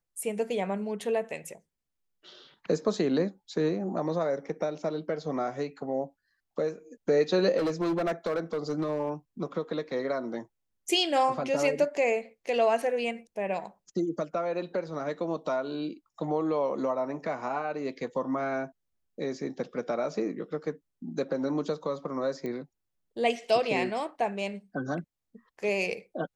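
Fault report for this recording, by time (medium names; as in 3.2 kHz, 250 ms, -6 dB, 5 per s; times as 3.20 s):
7.57–9.10 s: clipped -24.5 dBFS
22.46 s: pop -24 dBFS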